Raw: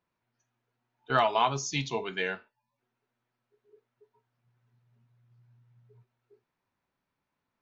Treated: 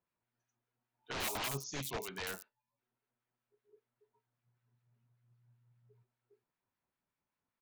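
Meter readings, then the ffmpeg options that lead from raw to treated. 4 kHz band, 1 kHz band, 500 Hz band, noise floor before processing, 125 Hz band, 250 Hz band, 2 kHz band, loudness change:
−7.0 dB, −16.5 dB, −13.5 dB, −85 dBFS, −9.5 dB, −9.5 dB, −9.5 dB, −10.5 dB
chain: -filter_complex "[0:a]aeval=exprs='(mod(15*val(0)+1,2)-1)/15':channel_layout=same,acrossover=split=5900[link_01][link_02];[link_02]adelay=90[link_03];[link_01][link_03]amix=inputs=2:normalize=0,acrossover=split=1300[link_04][link_05];[link_04]aeval=exprs='val(0)*(1-0.5/2+0.5/2*cos(2*PI*5.1*n/s))':channel_layout=same[link_06];[link_05]aeval=exprs='val(0)*(1-0.5/2-0.5/2*cos(2*PI*5.1*n/s))':channel_layout=same[link_07];[link_06][link_07]amix=inputs=2:normalize=0,volume=-5.5dB"

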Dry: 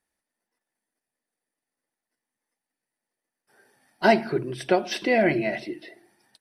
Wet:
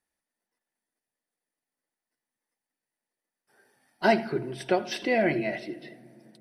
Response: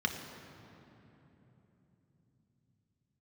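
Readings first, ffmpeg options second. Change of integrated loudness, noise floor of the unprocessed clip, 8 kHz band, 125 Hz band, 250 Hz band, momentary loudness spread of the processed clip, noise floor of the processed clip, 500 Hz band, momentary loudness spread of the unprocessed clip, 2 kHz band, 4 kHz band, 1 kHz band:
−3.5 dB, below −85 dBFS, −3.5 dB, −3.0 dB, −3.5 dB, 12 LU, below −85 dBFS, −3.5 dB, 13 LU, −3.5 dB, −3.5 dB, −3.5 dB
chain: -filter_complex "[0:a]asplit=2[link_01][link_02];[1:a]atrim=start_sample=2205,adelay=79[link_03];[link_02][link_03]afir=irnorm=-1:irlink=0,volume=-24dB[link_04];[link_01][link_04]amix=inputs=2:normalize=0,volume=-3.5dB"

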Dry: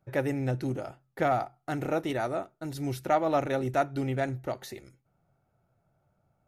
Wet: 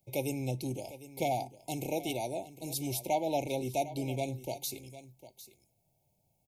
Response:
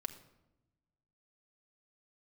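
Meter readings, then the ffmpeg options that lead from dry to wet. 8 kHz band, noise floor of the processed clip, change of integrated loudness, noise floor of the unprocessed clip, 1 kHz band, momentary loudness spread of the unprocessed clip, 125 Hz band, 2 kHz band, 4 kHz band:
+9.0 dB, −76 dBFS, −4.5 dB, −75 dBFS, −5.5 dB, 11 LU, −5.0 dB, −8.0 dB, +3.5 dB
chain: -filter_complex "[0:a]afftfilt=real='re*(1-between(b*sr/4096,950,2100))':imag='im*(1-between(b*sr/4096,950,2100))':win_size=4096:overlap=0.75,acrossover=split=180|1800[link_01][link_02][link_03];[link_03]crystalizer=i=5.5:c=0[link_04];[link_01][link_02][link_04]amix=inputs=3:normalize=0,aecho=1:1:753:0.168,adynamicequalizer=threshold=0.00562:dfrequency=3200:dqfactor=0.7:tfrequency=3200:tqfactor=0.7:attack=5:release=100:ratio=0.375:range=3:mode=cutabove:tftype=highshelf,volume=-5dB"

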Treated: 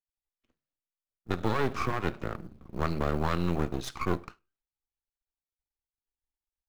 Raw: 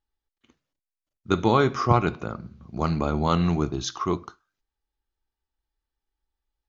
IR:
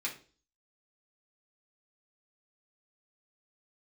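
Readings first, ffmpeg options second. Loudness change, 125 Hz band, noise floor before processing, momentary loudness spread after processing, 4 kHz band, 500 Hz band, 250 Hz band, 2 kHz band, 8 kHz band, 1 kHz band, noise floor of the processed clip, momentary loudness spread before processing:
−7.5 dB, −7.5 dB, below −85 dBFS, 10 LU, −8.0 dB, −7.0 dB, −7.5 dB, −3.0 dB, can't be measured, −8.0 dB, below −85 dBFS, 14 LU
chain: -filter_complex "[0:a]agate=range=-11dB:threshold=-48dB:ratio=16:detection=peak,highshelf=frequency=4500:gain=-9.5,acrossover=split=260|3000[link_01][link_02][link_03];[link_01]acompressor=threshold=-29dB:ratio=2[link_04];[link_04][link_02][link_03]amix=inputs=3:normalize=0,alimiter=limit=-13.5dB:level=0:latency=1:release=122,aeval=exprs='max(val(0),0)':channel_layout=same,acrusher=bits=9:mode=log:mix=0:aa=0.000001,asplit=2[link_05][link_06];[1:a]atrim=start_sample=2205,asetrate=52920,aresample=44100[link_07];[link_06][link_07]afir=irnorm=-1:irlink=0,volume=-20dB[link_08];[link_05][link_08]amix=inputs=2:normalize=0"

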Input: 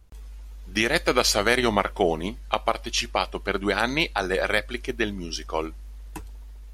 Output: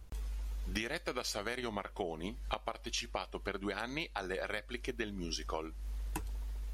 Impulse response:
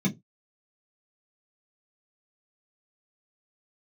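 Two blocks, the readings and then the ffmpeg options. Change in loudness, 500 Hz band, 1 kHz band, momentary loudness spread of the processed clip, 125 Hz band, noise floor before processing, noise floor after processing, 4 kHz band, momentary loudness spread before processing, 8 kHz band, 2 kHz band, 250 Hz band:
−15.0 dB, −15.0 dB, −15.0 dB, 6 LU, −9.0 dB, −41 dBFS, −52 dBFS, −14.5 dB, 21 LU, −14.0 dB, −15.5 dB, −13.5 dB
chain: -af "acompressor=threshold=-37dB:ratio=8,volume=2dB"

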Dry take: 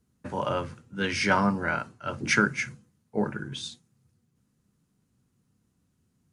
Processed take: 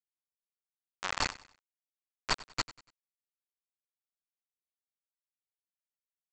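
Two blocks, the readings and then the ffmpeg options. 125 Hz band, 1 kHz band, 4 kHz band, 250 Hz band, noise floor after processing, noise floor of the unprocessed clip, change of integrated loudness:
−18.0 dB, −11.0 dB, −3.0 dB, −23.0 dB, below −85 dBFS, −73 dBFS, −7.5 dB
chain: -filter_complex "[0:a]alimiter=limit=-16dB:level=0:latency=1:release=151,asplit=3[link_01][link_02][link_03];[link_01]bandpass=frequency=270:width_type=q:width=8,volume=0dB[link_04];[link_02]bandpass=frequency=2290:width_type=q:width=8,volume=-6dB[link_05];[link_03]bandpass=frequency=3010:width_type=q:width=8,volume=-9dB[link_06];[link_04][link_05][link_06]amix=inputs=3:normalize=0,aemphasis=mode=production:type=75fm,aeval=exprs='abs(val(0))':channel_layout=same,aresample=16000,acrusher=bits=4:mix=0:aa=0.000001,aresample=44100,equalizer=frequency=1200:width_type=o:width=2:gain=14,aecho=1:1:96|192|288:0.112|0.0404|0.0145"

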